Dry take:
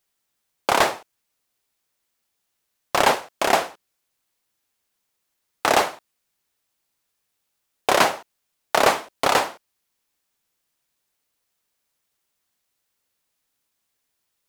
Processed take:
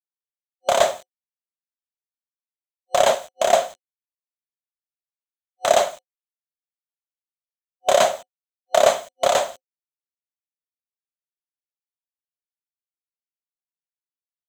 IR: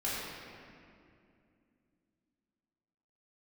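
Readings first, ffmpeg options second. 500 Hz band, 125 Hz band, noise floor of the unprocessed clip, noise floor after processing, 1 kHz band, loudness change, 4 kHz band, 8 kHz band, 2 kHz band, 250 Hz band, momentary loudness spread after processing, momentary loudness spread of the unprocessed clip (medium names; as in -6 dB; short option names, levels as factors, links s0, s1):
+5.0 dB, no reading, -77 dBFS, under -85 dBFS, -1.0 dB, +1.0 dB, -1.0 dB, +2.0 dB, -5.5 dB, -8.5 dB, 11 LU, 11 LU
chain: -af "acrusher=bits=6:mix=0:aa=0.000001,superequalizer=6b=0.447:8b=3.98:13b=2:15b=2.82,volume=0.531"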